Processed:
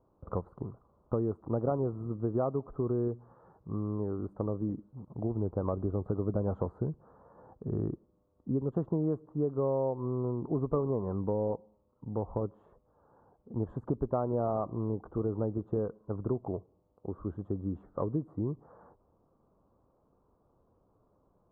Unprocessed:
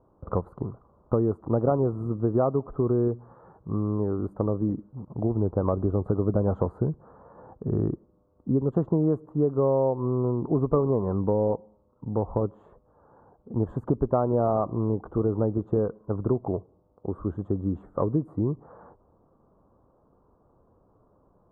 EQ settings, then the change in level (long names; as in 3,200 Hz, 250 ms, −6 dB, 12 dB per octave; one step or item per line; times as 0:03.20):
high-frequency loss of the air 58 metres
−7.0 dB